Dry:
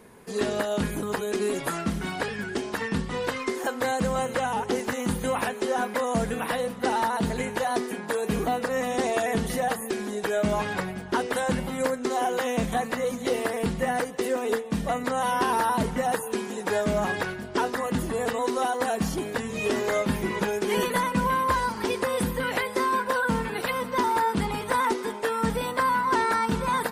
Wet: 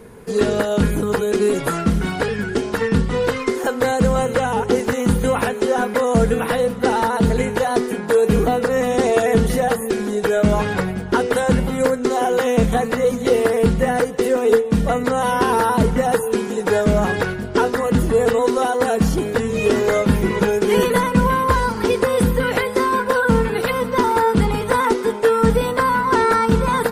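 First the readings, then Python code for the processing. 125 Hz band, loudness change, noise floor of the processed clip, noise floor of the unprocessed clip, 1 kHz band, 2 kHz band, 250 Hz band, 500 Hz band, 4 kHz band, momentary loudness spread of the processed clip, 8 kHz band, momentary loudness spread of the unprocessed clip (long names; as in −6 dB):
+12.0 dB, +8.5 dB, −27 dBFS, −36 dBFS, +6.0 dB, +6.0 dB, +9.5 dB, +10.5 dB, +5.0 dB, 4 LU, +5.0 dB, 5 LU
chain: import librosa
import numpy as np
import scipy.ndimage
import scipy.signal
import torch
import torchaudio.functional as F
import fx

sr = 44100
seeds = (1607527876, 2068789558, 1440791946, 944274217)

y = fx.low_shelf(x, sr, hz=180.0, db=11.0)
y = fx.small_body(y, sr, hz=(460.0, 1400.0), ring_ms=45, db=8)
y = F.gain(torch.from_numpy(y), 5.0).numpy()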